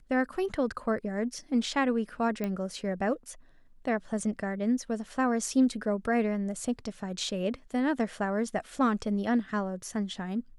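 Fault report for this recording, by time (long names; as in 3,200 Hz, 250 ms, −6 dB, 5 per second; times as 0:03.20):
0:02.44: click −19 dBFS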